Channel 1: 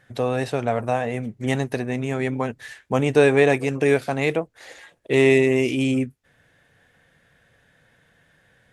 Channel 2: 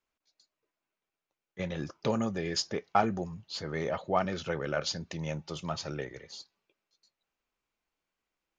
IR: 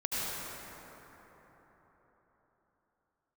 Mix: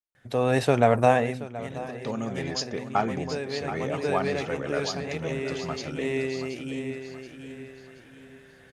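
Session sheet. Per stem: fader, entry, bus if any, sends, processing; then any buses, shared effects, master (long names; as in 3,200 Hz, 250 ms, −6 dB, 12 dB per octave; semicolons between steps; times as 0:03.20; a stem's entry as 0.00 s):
−5.0 dB, 0.15 s, no send, echo send −17 dB, automatic ducking −21 dB, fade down 0.40 s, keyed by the second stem
0:01.72 −18.5 dB → 0:02.33 −8.5 dB, 0.00 s, no send, echo send −10.5 dB, pitch vibrato 2.7 Hz 11 cents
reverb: not used
echo: repeating echo 727 ms, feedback 38%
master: automatic gain control gain up to 9 dB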